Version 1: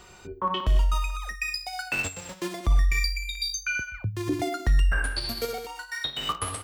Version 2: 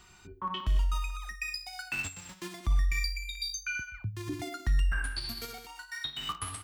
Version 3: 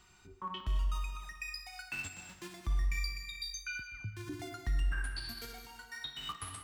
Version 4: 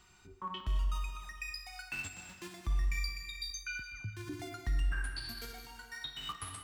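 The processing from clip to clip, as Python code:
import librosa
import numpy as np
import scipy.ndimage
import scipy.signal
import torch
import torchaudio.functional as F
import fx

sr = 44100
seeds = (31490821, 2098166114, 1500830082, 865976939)

y1 = fx.peak_eq(x, sr, hz=520.0, db=-14.5, octaves=0.8)
y1 = y1 * 10.0 ** (-5.5 / 20.0)
y2 = fx.rev_plate(y1, sr, seeds[0], rt60_s=1.9, hf_ratio=0.6, predelay_ms=115, drr_db=8.5)
y2 = y2 * 10.0 ** (-6.0 / 20.0)
y3 = fx.echo_feedback(y2, sr, ms=418, feedback_pct=47, wet_db=-21.0)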